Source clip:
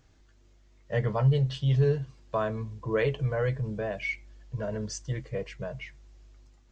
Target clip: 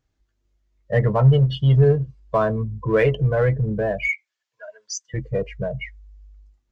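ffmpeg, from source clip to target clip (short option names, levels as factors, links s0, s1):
-filter_complex "[0:a]asettb=1/sr,asplit=3[s0][s1][s2];[s0]atrim=end=4.084[s3];[s1]atrim=start=4.08:end=5.14,asetpts=PTS-STARTPTS,afade=t=in:d=0.004:c=qsin,afade=t=out:st=1.056:d=0.004:c=qsin,highpass=1300[s4];[s2]atrim=start=5.136[s5];[s3][s4]acrossfade=d=0.004:c1=hsin:c2=qsin[s6];[s6][s5]acrossfade=d=0.004:c1=qsin:c2=hsin,afftdn=nr=23:nf=-37,asplit=2[s7][s8];[s8]asoftclip=type=hard:threshold=0.0251,volume=0.282[s9];[s7][s9]amix=inputs=2:normalize=0,volume=2.51"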